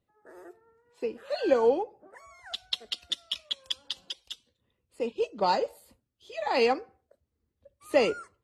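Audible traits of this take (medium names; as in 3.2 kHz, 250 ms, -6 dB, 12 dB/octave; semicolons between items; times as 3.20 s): noise floor -81 dBFS; spectral tilt -0.5 dB/octave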